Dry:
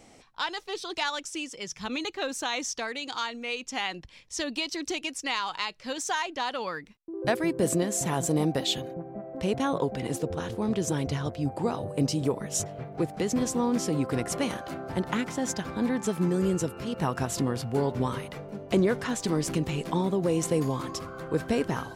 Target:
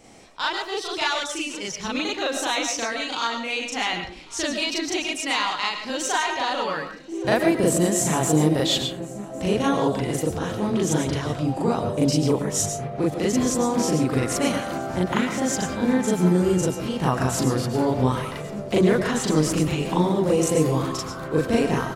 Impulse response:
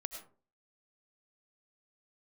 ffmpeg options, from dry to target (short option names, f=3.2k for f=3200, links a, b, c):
-filter_complex "[0:a]aecho=1:1:1104|2208|3312|4416:0.075|0.0442|0.0261|0.0154,asplit=2[a][b];[1:a]atrim=start_sample=2205,adelay=39[c];[b][c]afir=irnorm=-1:irlink=0,volume=5dB[d];[a][d]amix=inputs=2:normalize=0,volume=1.5dB"